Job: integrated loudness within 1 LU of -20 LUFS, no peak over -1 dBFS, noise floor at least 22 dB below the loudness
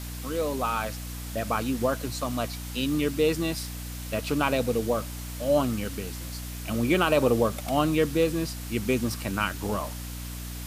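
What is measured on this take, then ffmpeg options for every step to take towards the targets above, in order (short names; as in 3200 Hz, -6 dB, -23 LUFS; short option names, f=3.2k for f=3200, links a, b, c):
hum 60 Hz; harmonics up to 300 Hz; hum level -34 dBFS; noise floor -37 dBFS; noise floor target -50 dBFS; loudness -27.5 LUFS; peak -9.0 dBFS; loudness target -20.0 LUFS
-> -af "bandreject=f=60:t=h:w=6,bandreject=f=120:t=h:w=6,bandreject=f=180:t=h:w=6,bandreject=f=240:t=h:w=6,bandreject=f=300:t=h:w=6"
-af "afftdn=nr=13:nf=-37"
-af "volume=7.5dB"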